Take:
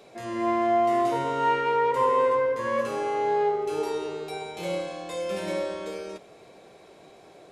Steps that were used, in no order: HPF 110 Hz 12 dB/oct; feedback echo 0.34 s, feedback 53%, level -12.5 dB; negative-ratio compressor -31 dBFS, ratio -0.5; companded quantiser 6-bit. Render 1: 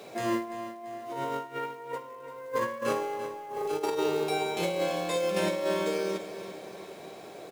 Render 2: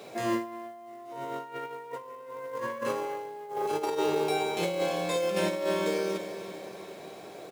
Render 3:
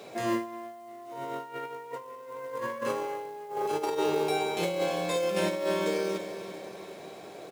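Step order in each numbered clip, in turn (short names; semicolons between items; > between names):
HPF > companded quantiser > negative-ratio compressor > feedback echo; feedback echo > companded quantiser > negative-ratio compressor > HPF; feedback echo > negative-ratio compressor > HPF > companded quantiser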